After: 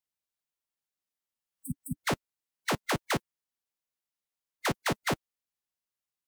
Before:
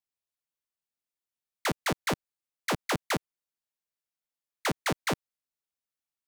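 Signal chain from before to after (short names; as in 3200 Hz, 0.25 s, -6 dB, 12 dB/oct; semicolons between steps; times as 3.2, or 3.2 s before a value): spectral repair 1.38–1.94, 300–7900 Hz; formant-preserving pitch shift -1.5 st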